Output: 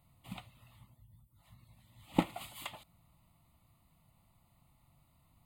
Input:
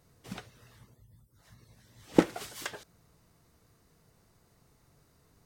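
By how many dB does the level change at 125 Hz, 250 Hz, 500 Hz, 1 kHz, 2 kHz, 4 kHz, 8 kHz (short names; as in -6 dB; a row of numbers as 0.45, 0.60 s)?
-3.0, -7.0, -12.0, -2.0, -6.5, -3.5, -8.5 dB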